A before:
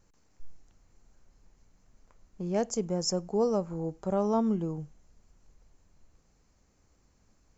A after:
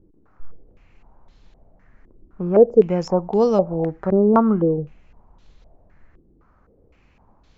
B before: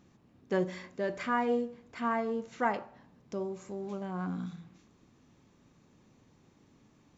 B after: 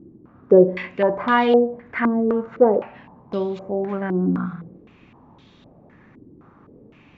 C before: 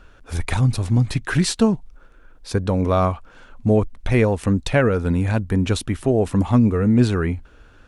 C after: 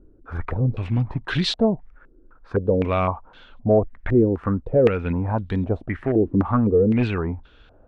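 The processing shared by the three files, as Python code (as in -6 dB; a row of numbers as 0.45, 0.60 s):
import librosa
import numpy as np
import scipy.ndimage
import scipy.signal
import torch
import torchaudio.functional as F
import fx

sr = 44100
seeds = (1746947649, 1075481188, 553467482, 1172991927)

y = np.clip(10.0 ** (10.0 / 20.0) * x, -1.0, 1.0) / 10.0 ** (10.0 / 20.0)
y = fx.filter_held_lowpass(y, sr, hz=3.9, low_hz=340.0, high_hz=3600.0)
y = y * 10.0 ** (-22 / 20.0) / np.sqrt(np.mean(np.square(y)))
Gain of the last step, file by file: +9.5, +11.5, -4.5 dB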